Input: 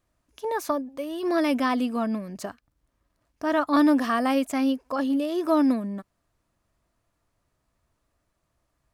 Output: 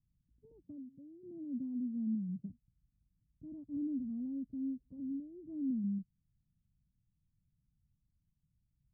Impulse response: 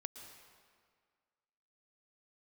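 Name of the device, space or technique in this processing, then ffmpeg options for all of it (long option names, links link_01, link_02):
the neighbour's flat through the wall: -filter_complex "[0:a]lowpass=frequency=190:width=0.5412,lowpass=frequency=190:width=1.3066,equalizer=frequency=160:width_type=o:width=0.92:gain=7,asplit=3[link_01][link_02][link_03];[link_01]afade=type=out:start_time=0.62:duration=0.02[link_04];[link_02]highpass=frequency=92:width=0.5412,highpass=frequency=92:width=1.3066,afade=type=in:start_time=0.62:duration=0.02,afade=type=out:start_time=2.48:duration=0.02[link_05];[link_03]afade=type=in:start_time=2.48:duration=0.02[link_06];[link_04][link_05][link_06]amix=inputs=3:normalize=0,volume=-4dB"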